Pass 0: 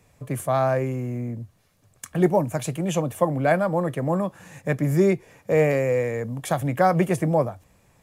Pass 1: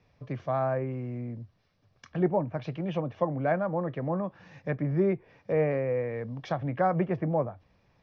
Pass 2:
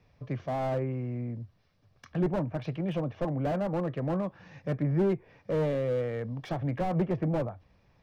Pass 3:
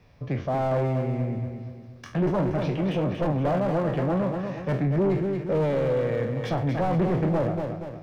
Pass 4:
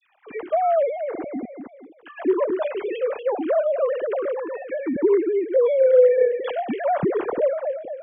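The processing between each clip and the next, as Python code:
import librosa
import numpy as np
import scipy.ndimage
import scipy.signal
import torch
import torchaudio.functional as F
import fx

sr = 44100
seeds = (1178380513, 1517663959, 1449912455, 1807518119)

y1 = scipy.signal.sosfilt(scipy.signal.butter(12, 5700.0, 'lowpass', fs=sr, output='sos'), x)
y1 = fx.env_lowpass_down(y1, sr, base_hz=1900.0, full_db=-20.0)
y1 = y1 * librosa.db_to_amplitude(-6.5)
y2 = fx.low_shelf(y1, sr, hz=86.0, db=5.5)
y2 = fx.slew_limit(y2, sr, full_power_hz=25.0)
y3 = fx.spec_trails(y2, sr, decay_s=0.36)
y3 = fx.echo_feedback(y3, sr, ms=236, feedback_pct=44, wet_db=-7.5)
y3 = 10.0 ** (-24.5 / 20.0) * np.tanh(y3 / 10.0 ** (-24.5 / 20.0))
y3 = y3 * librosa.db_to_amplitude(6.5)
y4 = fx.sine_speech(y3, sr)
y4 = fx.dispersion(y4, sr, late='lows', ms=57.0, hz=1700.0)
y4 = y4 * librosa.db_to_amplitude(3.5)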